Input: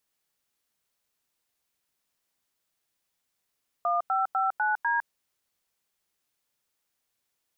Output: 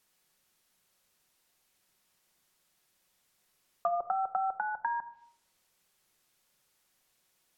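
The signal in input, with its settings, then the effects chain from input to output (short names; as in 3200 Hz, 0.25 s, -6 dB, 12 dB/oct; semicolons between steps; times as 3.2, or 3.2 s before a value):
DTMF "1559D", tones 0.156 s, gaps 93 ms, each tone -25.5 dBFS
treble ducked by the level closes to 450 Hz, closed at -24.5 dBFS; in parallel at -1 dB: negative-ratio compressor -39 dBFS, ratio -1; on the sum: shoebox room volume 2100 m³, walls furnished, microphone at 0.99 m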